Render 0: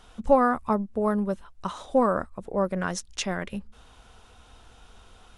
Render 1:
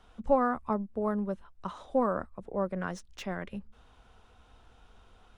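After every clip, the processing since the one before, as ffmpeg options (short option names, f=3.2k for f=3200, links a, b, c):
-filter_complex "[0:a]highshelf=f=4.3k:g=-11,acrossover=split=160|2700[a][b][c];[c]asoftclip=type=tanh:threshold=-36.5dB[d];[a][b][d]amix=inputs=3:normalize=0,volume=-5.5dB"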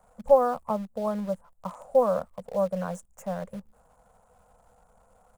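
-filter_complex "[0:a]firequalizer=gain_entry='entry(100,0);entry(170,10);entry(350,-13);entry(500,14);entry(3600,-28);entry(7200,14)':delay=0.05:min_phase=1,asplit=2[a][b];[b]acrusher=bits=6:dc=4:mix=0:aa=0.000001,volume=-9dB[c];[a][c]amix=inputs=2:normalize=0,volume=-8dB"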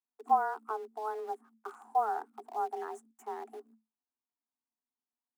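-filter_complex "[0:a]agate=range=-36dB:threshold=-49dB:ratio=16:detection=peak,acrossover=split=140|1700[a][b][c];[c]alimiter=level_in=15dB:limit=-24dB:level=0:latency=1:release=299,volume=-15dB[d];[a][b][d]amix=inputs=3:normalize=0,afreqshift=220,volume=-8dB"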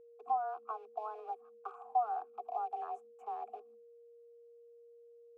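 -filter_complex "[0:a]acrossover=split=390|1300[a][b][c];[a]acompressor=threshold=-52dB:ratio=4[d];[b]acompressor=threshold=-42dB:ratio=4[e];[c]acompressor=threshold=-44dB:ratio=4[f];[d][e][f]amix=inputs=3:normalize=0,asplit=3[g][h][i];[g]bandpass=f=730:t=q:w=8,volume=0dB[j];[h]bandpass=f=1.09k:t=q:w=8,volume=-6dB[k];[i]bandpass=f=2.44k:t=q:w=8,volume=-9dB[l];[j][k][l]amix=inputs=3:normalize=0,aeval=exprs='val(0)+0.000562*sin(2*PI*470*n/s)':c=same,volume=9dB"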